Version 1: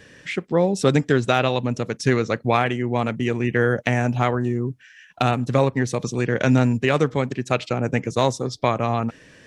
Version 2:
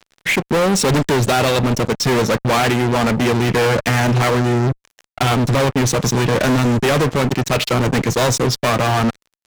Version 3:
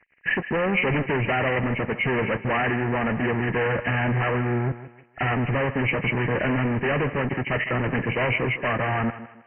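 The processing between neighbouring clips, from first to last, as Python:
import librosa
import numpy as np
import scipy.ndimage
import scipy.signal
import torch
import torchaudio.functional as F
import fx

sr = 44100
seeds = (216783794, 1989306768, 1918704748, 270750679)

y1 = fx.env_lowpass(x, sr, base_hz=2900.0, full_db=-18.0)
y1 = fx.fuzz(y1, sr, gain_db=32.0, gate_db=-40.0)
y2 = fx.freq_compress(y1, sr, knee_hz=1600.0, ratio=4.0)
y2 = fx.echo_thinned(y2, sr, ms=157, feedback_pct=35, hz=150.0, wet_db=-13)
y2 = y2 * 10.0 ** (-8.5 / 20.0)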